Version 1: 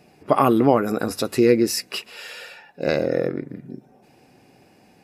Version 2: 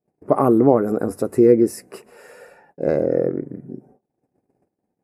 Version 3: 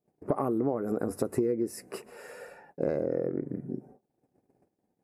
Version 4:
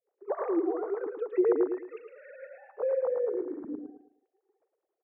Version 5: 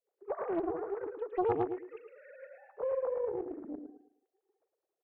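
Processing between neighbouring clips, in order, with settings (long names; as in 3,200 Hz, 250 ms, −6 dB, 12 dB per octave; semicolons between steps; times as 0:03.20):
noise gate −50 dBFS, range −31 dB; drawn EQ curve 240 Hz 0 dB, 420 Hz +3 dB, 2,000 Hz −11 dB, 3,300 Hz −28 dB, 9,400 Hz −5 dB, 14,000 Hz −12 dB; level +1.5 dB
downward compressor 10 to 1, threshold −23 dBFS, peak gain reduction 15.5 dB; level −1.5 dB
three sine waves on the formant tracks; on a send: repeating echo 110 ms, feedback 30%, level −6 dB
highs frequency-modulated by the lows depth 0.54 ms; level −4.5 dB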